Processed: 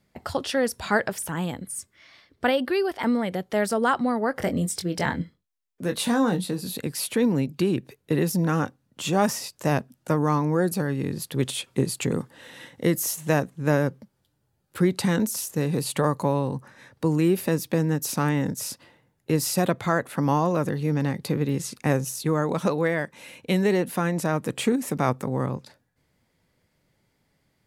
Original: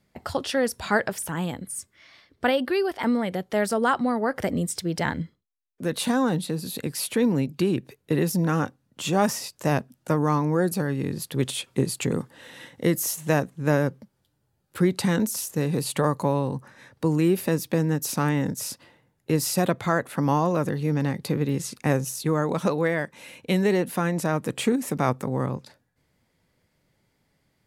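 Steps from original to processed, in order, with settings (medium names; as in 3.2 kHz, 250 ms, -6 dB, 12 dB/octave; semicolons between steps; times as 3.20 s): 4.37–6.74 s: doubling 22 ms -7.5 dB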